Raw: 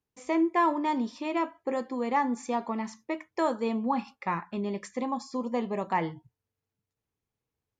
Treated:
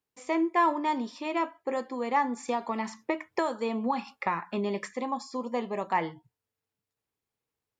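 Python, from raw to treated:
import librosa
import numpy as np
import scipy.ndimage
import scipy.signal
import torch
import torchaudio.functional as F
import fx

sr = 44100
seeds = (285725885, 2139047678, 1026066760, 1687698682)

y = fx.low_shelf(x, sr, hz=240.0, db=-10.0)
y = fx.notch(y, sr, hz=6200.0, q=15.0)
y = fx.band_squash(y, sr, depth_pct=100, at=(2.48, 4.94))
y = F.gain(torch.from_numpy(y), 1.5).numpy()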